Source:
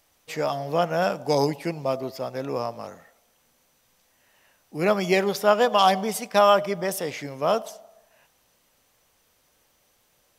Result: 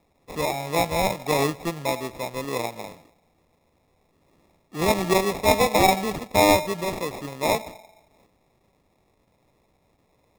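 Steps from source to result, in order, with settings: sample-and-hold 29×; ending taper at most 300 dB/s

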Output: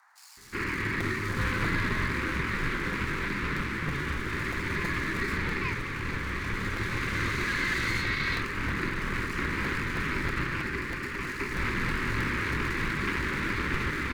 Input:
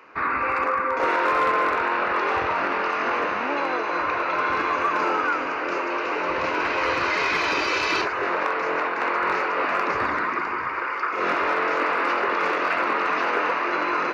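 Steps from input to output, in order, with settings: minimum comb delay 0.42 ms; bell 1100 Hz -15 dB 0.35 oct; frequency shift -420 Hz; bands offset in time highs, lows 0.37 s, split 5000 Hz; band noise 790–1900 Hz -59 dBFS; crackling interface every 0.32 s, samples 256, repeat, from 1; gain -3 dB

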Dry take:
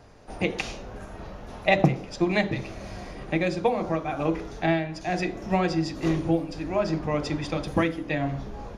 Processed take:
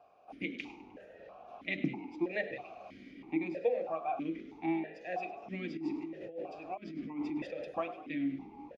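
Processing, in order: on a send: frequency-shifting echo 0.101 s, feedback 54%, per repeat +52 Hz, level -15 dB; 5.77–7.65 on the sum: negative-ratio compressor -30 dBFS, ratio -1; vowel sequencer 3.1 Hz

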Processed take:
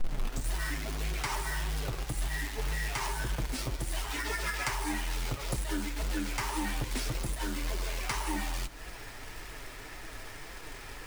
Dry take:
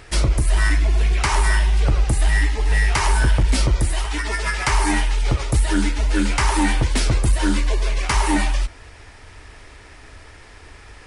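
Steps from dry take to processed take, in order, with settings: tape start at the beginning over 0.49 s; bell 76 Hz -12.5 dB 0.4 oct; compressor 20:1, threshold -28 dBFS, peak gain reduction 16.5 dB; companded quantiser 4-bit; flange 1.8 Hz, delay 5.3 ms, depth 3 ms, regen -28%; on a send: reverb RT60 2.4 s, pre-delay 3 ms, DRR 19 dB; on the sum: gain +2.5 dB

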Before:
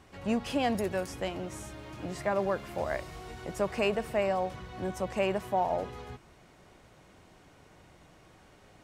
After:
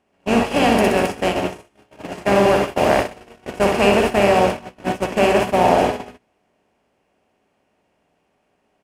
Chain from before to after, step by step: per-bin compression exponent 0.4; reverse bouncing-ball echo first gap 60 ms, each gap 1.1×, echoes 5; gate -23 dBFS, range -42 dB; gain +7.5 dB

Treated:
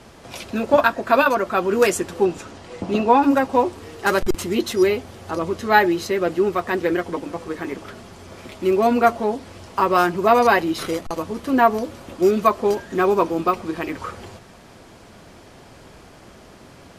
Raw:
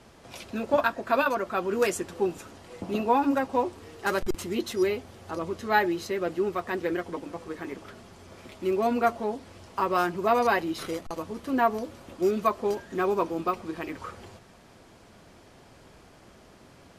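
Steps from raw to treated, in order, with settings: 2.25–3.23 LPF 8100 Hz 12 dB/oct; gain +8 dB

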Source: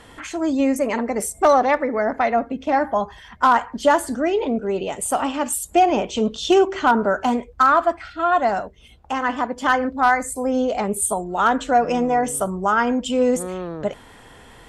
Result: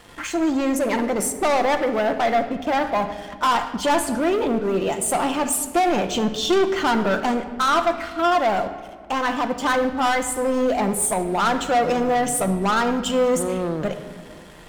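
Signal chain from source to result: sample leveller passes 3; shoebox room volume 2400 m³, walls mixed, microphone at 0.83 m; gain -8 dB

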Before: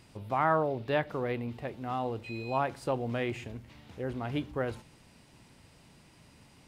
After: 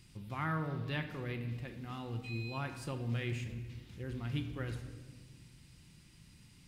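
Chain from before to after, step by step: passive tone stack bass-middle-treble 6-0-2; reverb RT60 1.5 s, pre-delay 6 ms, DRR 6 dB; gain +13.5 dB

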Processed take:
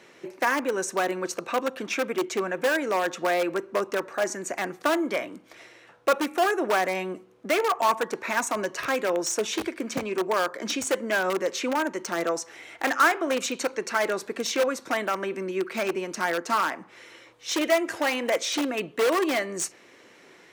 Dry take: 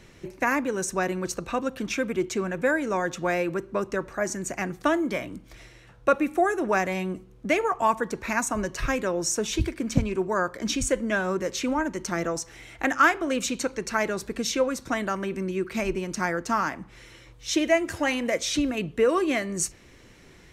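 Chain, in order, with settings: in parallel at -4 dB: wrapped overs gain 18.5 dB; on the sum: HPF 380 Hz 12 dB/oct; high shelf 3400 Hz -7 dB

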